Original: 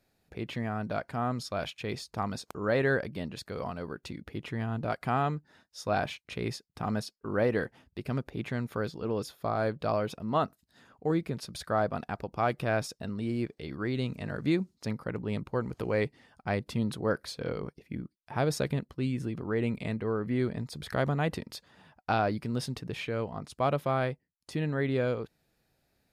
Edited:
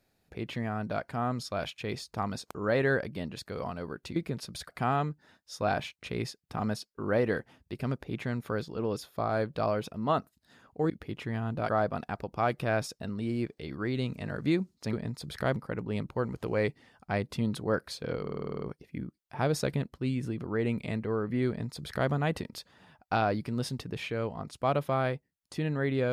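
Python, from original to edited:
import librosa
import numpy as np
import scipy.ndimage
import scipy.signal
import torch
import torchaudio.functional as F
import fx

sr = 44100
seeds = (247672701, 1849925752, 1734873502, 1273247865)

y = fx.edit(x, sr, fx.swap(start_s=4.16, length_s=0.79, other_s=11.16, other_length_s=0.53),
    fx.stutter(start_s=17.58, slice_s=0.05, count=9),
    fx.duplicate(start_s=20.45, length_s=0.63, to_s=14.93), tone=tone)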